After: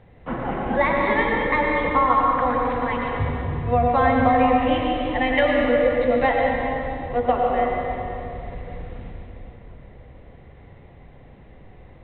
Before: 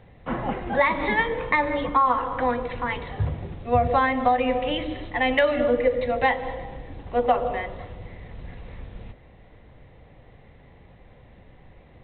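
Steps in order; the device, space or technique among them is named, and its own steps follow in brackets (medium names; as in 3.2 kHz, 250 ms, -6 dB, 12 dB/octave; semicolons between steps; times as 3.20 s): swimming-pool hall (reverberation RT60 3.0 s, pre-delay 86 ms, DRR -1.5 dB; treble shelf 3.8 kHz -7.5 dB)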